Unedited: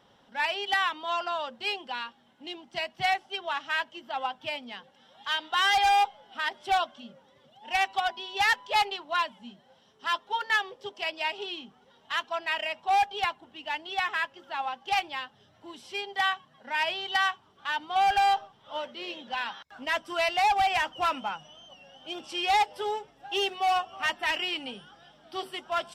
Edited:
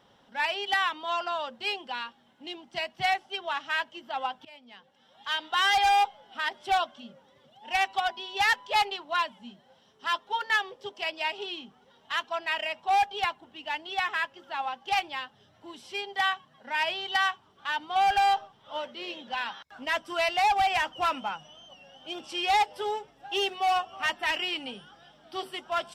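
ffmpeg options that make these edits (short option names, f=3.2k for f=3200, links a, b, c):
-filter_complex "[0:a]asplit=2[a][b];[a]atrim=end=4.45,asetpts=PTS-STARTPTS,afade=t=out:st=4.446:d=0.004:c=hsin:silence=0.0891251[c];[b]atrim=start=4.45,asetpts=PTS-STARTPTS,afade=t=in:d=0.98:silence=0.0891251[d];[c][d]concat=n=2:v=0:a=1"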